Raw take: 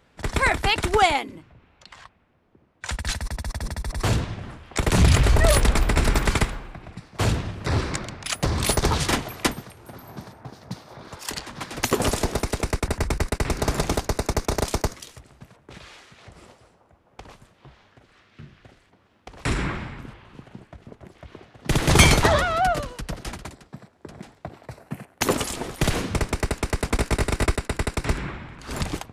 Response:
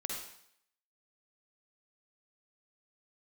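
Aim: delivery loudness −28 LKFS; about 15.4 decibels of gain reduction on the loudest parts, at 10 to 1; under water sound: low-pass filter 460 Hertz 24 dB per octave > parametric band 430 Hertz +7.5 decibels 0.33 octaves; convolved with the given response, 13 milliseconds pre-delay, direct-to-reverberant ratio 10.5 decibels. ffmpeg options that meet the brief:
-filter_complex "[0:a]acompressor=threshold=-26dB:ratio=10,asplit=2[link_01][link_02];[1:a]atrim=start_sample=2205,adelay=13[link_03];[link_02][link_03]afir=irnorm=-1:irlink=0,volume=-12dB[link_04];[link_01][link_04]amix=inputs=2:normalize=0,lowpass=frequency=460:width=0.5412,lowpass=frequency=460:width=1.3066,equalizer=frequency=430:width_type=o:width=0.33:gain=7.5,volume=7dB"

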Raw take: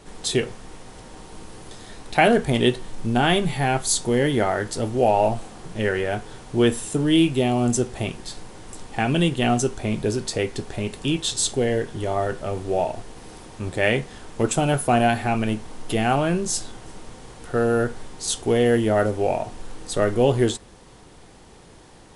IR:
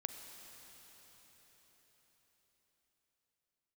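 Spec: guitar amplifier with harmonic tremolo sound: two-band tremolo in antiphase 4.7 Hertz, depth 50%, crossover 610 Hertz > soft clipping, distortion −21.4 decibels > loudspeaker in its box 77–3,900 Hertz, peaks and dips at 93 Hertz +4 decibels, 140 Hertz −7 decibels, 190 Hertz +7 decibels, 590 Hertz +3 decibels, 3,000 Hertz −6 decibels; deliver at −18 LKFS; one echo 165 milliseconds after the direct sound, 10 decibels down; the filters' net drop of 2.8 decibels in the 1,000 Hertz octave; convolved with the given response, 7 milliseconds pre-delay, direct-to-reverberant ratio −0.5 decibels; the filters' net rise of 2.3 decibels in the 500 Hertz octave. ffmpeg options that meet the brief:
-filter_complex "[0:a]equalizer=frequency=500:width_type=o:gain=3.5,equalizer=frequency=1000:width_type=o:gain=-8,aecho=1:1:165:0.316,asplit=2[link_01][link_02];[1:a]atrim=start_sample=2205,adelay=7[link_03];[link_02][link_03]afir=irnorm=-1:irlink=0,volume=2dB[link_04];[link_01][link_04]amix=inputs=2:normalize=0,acrossover=split=610[link_05][link_06];[link_05]aeval=exprs='val(0)*(1-0.5/2+0.5/2*cos(2*PI*4.7*n/s))':channel_layout=same[link_07];[link_06]aeval=exprs='val(0)*(1-0.5/2-0.5/2*cos(2*PI*4.7*n/s))':channel_layout=same[link_08];[link_07][link_08]amix=inputs=2:normalize=0,asoftclip=threshold=-8.5dB,highpass=77,equalizer=frequency=93:width_type=q:width=4:gain=4,equalizer=frequency=140:width_type=q:width=4:gain=-7,equalizer=frequency=190:width_type=q:width=4:gain=7,equalizer=frequency=590:width_type=q:width=4:gain=3,equalizer=frequency=3000:width_type=q:width=4:gain=-6,lowpass=frequency=3900:width=0.5412,lowpass=frequency=3900:width=1.3066,volume=4.5dB"

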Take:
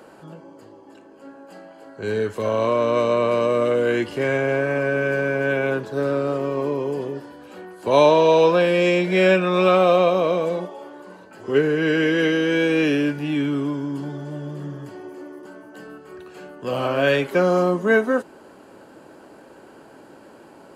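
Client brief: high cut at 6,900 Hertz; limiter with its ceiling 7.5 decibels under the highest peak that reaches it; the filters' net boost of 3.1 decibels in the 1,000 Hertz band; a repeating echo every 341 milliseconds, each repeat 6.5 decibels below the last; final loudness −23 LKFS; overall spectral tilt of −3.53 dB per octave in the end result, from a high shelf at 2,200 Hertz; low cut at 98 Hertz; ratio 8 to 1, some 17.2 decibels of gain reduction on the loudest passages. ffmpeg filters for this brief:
ffmpeg -i in.wav -af "highpass=98,lowpass=6900,equalizer=frequency=1000:width_type=o:gain=5,highshelf=frequency=2200:gain=-6.5,acompressor=threshold=-27dB:ratio=8,alimiter=level_in=1dB:limit=-24dB:level=0:latency=1,volume=-1dB,aecho=1:1:341|682|1023|1364|1705|2046:0.473|0.222|0.105|0.0491|0.0231|0.0109,volume=10.5dB" out.wav

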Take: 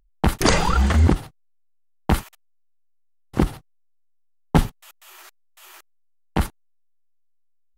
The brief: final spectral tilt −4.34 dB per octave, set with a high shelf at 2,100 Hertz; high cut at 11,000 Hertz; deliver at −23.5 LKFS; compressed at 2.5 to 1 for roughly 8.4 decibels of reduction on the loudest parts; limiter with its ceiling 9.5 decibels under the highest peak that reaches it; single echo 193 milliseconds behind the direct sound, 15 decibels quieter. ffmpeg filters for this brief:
ffmpeg -i in.wav -af "lowpass=11000,highshelf=frequency=2100:gain=7.5,acompressor=threshold=-23dB:ratio=2.5,alimiter=limit=-15.5dB:level=0:latency=1,aecho=1:1:193:0.178,volume=7.5dB" out.wav

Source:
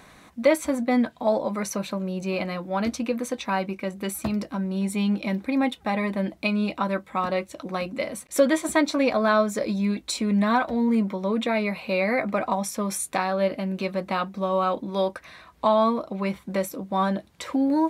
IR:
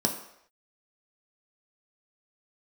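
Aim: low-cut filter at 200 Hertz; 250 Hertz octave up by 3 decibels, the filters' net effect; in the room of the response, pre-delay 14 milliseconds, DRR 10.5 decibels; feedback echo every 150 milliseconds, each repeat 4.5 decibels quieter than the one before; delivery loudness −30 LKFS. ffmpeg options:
-filter_complex "[0:a]highpass=200,equalizer=frequency=250:width_type=o:gain=6,aecho=1:1:150|300|450|600|750|900|1050|1200|1350:0.596|0.357|0.214|0.129|0.0772|0.0463|0.0278|0.0167|0.01,asplit=2[link_01][link_02];[1:a]atrim=start_sample=2205,adelay=14[link_03];[link_02][link_03]afir=irnorm=-1:irlink=0,volume=-19.5dB[link_04];[link_01][link_04]amix=inputs=2:normalize=0,volume=-9.5dB"

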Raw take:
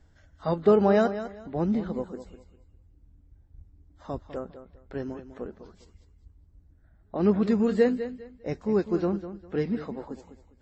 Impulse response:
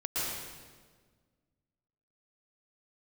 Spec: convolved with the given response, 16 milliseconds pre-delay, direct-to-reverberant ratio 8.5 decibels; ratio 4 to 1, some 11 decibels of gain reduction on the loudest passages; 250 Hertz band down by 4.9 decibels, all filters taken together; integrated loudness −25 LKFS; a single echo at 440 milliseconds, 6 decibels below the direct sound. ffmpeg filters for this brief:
-filter_complex "[0:a]equalizer=frequency=250:width_type=o:gain=-6.5,acompressor=threshold=-30dB:ratio=4,aecho=1:1:440:0.501,asplit=2[link_01][link_02];[1:a]atrim=start_sample=2205,adelay=16[link_03];[link_02][link_03]afir=irnorm=-1:irlink=0,volume=-15.5dB[link_04];[link_01][link_04]amix=inputs=2:normalize=0,volume=10.5dB"

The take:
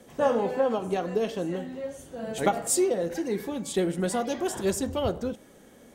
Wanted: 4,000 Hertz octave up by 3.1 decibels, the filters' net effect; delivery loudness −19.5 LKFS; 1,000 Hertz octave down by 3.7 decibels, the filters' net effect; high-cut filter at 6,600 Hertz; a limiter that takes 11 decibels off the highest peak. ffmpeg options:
ffmpeg -i in.wav -af "lowpass=6600,equalizer=frequency=1000:width_type=o:gain=-5.5,equalizer=frequency=4000:width_type=o:gain=5,volume=13dB,alimiter=limit=-10.5dB:level=0:latency=1" out.wav

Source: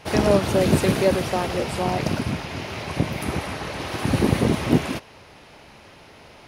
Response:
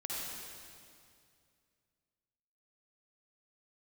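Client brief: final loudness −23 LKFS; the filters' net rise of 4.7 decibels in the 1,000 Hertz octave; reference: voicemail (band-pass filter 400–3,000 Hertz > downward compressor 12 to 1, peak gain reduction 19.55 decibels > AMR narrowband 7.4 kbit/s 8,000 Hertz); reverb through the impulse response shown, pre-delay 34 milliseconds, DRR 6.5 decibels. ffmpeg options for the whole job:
-filter_complex "[0:a]equalizer=frequency=1000:width_type=o:gain=6.5,asplit=2[link_01][link_02];[1:a]atrim=start_sample=2205,adelay=34[link_03];[link_02][link_03]afir=irnorm=-1:irlink=0,volume=-9dB[link_04];[link_01][link_04]amix=inputs=2:normalize=0,highpass=400,lowpass=3000,acompressor=threshold=-32dB:ratio=12,volume=16dB" -ar 8000 -c:a libopencore_amrnb -b:a 7400

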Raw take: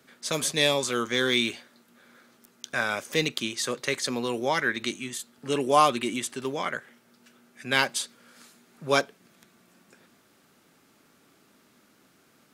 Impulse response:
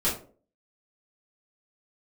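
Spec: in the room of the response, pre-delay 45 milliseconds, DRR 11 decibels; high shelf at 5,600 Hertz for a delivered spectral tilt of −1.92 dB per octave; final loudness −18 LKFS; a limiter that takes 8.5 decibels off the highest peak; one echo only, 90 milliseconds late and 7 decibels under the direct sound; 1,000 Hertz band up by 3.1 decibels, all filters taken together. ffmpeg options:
-filter_complex "[0:a]equalizer=frequency=1000:width_type=o:gain=3.5,highshelf=frequency=5600:gain=8.5,alimiter=limit=-12dB:level=0:latency=1,aecho=1:1:90:0.447,asplit=2[link_01][link_02];[1:a]atrim=start_sample=2205,adelay=45[link_03];[link_02][link_03]afir=irnorm=-1:irlink=0,volume=-21.5dB[link_04];[link_01][link_04]amix=inputs=2:normalize=0,volume=7.5dB"

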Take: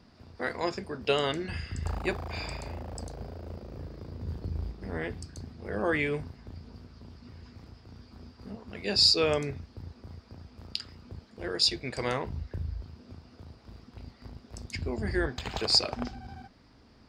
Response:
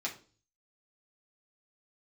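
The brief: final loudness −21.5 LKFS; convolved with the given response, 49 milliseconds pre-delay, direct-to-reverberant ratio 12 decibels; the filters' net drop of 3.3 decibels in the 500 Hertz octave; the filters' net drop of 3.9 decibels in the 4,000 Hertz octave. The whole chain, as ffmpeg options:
-filter_complex "[0:a]equalizer=frequency=500:width_type=o:gain=-4,equalizer=frequency=4000:width_type=o:gain=-5,asplit=2[link_01][link_02];[1:a]atrim=start_sample=2205,adelay=49[link_03];[link_02][link_03]afir=irnorm=-1:irlink=0,volume=-15dB[link_04];[link_01][link_04]amix=inputs=2:normalize=0,volume=11.5dB"

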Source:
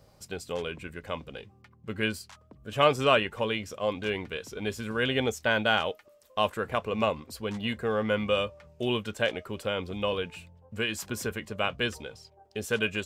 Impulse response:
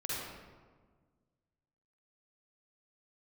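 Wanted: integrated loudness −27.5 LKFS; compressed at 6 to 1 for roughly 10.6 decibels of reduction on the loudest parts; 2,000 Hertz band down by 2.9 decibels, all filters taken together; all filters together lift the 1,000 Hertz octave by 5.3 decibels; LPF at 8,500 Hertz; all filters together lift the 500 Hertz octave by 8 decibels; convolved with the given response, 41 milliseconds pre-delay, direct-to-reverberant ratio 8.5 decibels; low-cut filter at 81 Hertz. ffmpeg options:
-filter_complex "[0:a]highpass=81,lowpass=8500,equalizer=frequency=500:width_type=o:gain=8,equalizer=frequency=1000:width_type=o:gain=6.5,equalizer=frequency=2000:width_type=o:gain=-8,acompressor=threshold=-22dB:ratio=6,asplit=2[link_01][link_02];[1:a]atrim=start_sample=2205,adelay=41[link_03];[link_02][link_03]afir=irnorm=-1:irlink=0,volume=-12dB[link_04];[link_01][link_04]amix=inputs=2:normalize=0,volume=1.5dB"

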